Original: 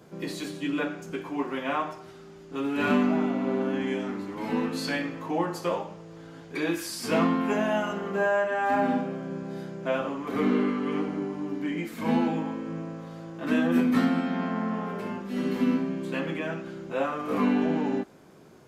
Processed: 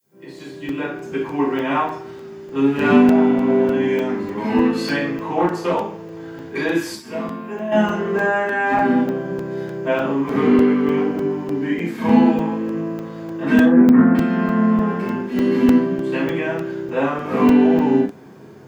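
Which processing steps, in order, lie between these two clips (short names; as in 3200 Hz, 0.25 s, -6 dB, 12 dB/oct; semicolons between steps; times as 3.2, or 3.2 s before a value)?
opening faded in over 1.27 s; 6.95–7.72 resonator 130 Hz, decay 0.93 s, harmonics odd, mix 80%; 13.65–14.15 LPF 1700 Hz 24 dB/oct; added noise violet -71 dBFS; reverb, pre-delay 3 ms, DRR -3.5 dB; crackling interface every 0.30 s, samples 128, zero, from 0.39; 5.23–5.82 Doppler distortion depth 0.24 ms; gain -4.5 dB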